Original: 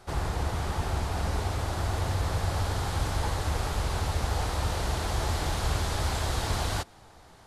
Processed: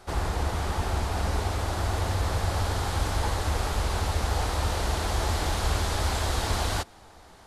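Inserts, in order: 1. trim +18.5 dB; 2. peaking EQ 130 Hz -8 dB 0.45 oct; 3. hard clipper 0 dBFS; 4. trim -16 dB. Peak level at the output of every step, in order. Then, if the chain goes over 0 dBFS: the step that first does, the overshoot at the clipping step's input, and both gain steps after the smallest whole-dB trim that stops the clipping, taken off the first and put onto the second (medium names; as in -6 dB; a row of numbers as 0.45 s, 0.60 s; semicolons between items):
+3.5 dBFS, +3.5 dBFS, 0.0 dBFS, -16.0 dBFS; step 1, 3.5 dB; step 1 +14.5 dB, step 4 -12 dB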